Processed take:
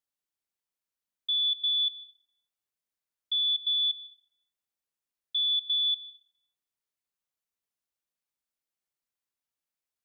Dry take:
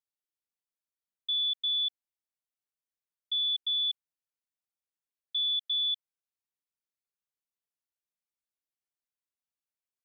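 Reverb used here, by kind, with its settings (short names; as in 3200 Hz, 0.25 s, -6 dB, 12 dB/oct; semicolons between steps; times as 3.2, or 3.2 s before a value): plate-style reverb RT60 1.3 s, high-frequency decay 0.45×, pre-delay 0.115 s, DRR 15.5 dB; gain +2 dB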